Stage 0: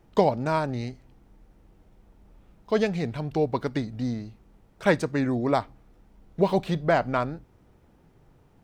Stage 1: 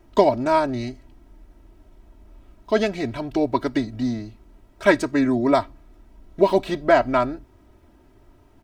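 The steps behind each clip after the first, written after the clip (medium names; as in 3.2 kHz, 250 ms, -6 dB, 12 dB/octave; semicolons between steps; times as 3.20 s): comb 3.1 ms, depth 78%; trim +3 dB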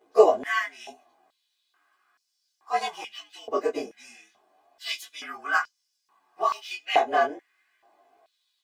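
frequency axis rescaled in octaves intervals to 112%; chorus 0.36 Hz, delay 18 ms, depth 7.1 ms; step-sequenced high-pass 2.3 Hz 490–5300 Hz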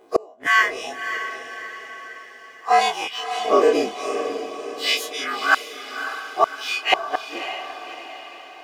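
every event in the spectrogram widened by 60 ms; inverted gate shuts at -10 dBFS, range -37 dB; echo that smears into a reverb 580 ms, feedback 50%, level -9 dB; trim +6.5 dB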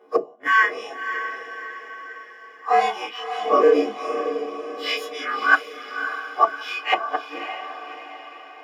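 reverberation RT60 0.15 s, pre-delay 3 ms, DRR 2.5 dB; trim -12 dB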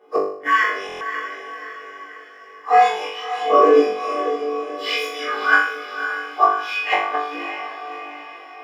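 on a send: flutter echo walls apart 3.5 m, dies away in 0.56 s; on the sum: buffer glitch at 0.87 s, samples 1024, times 5; trim -1 dB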